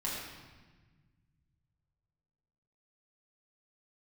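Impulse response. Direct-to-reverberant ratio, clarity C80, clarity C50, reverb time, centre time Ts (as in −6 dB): −7.0 dB, 2.0 dB, 0.0 dB, 1.3 s, 83 ms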